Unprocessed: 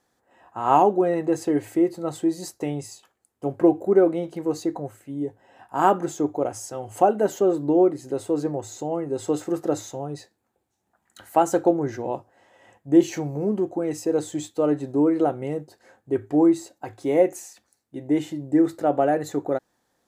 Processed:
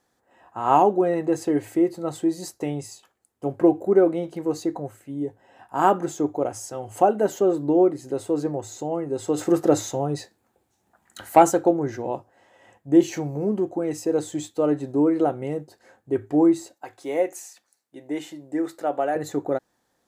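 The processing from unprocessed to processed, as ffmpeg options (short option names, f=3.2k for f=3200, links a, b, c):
-filter_complex "[0:a]asplit=3[a][b][c];[a]afade=t=out:st=9.37:d=0.02[d];[b]acontrast=62,afade=t=in:st=9.37:d=0.02,afade=t=out:st=11.5:d=0.02[e];[c]afade=t=in:st=11.5:d=0.02[f];[d][e][f]amix=inputs=3:normalize=0,asettb=1/sr,asplit=3[g][h][i];[g]atrim=end=16.744[j];[h]atrim=start=16.74:end=19.16,asetpts=PTS-STARTPTS,afade=t=in:d=0.004:c=qsin,afade=t=out:st=2.416:d=0.004:c=qsin,highpass=f=680:p=1[k];[i]atrim=start=19.156[l];[j][k]acrossfade=d=0.004:c1=hsin:c2=qsin[m];[m][l]acrossfade=d=0.004:c1=qsin:c2=hsin"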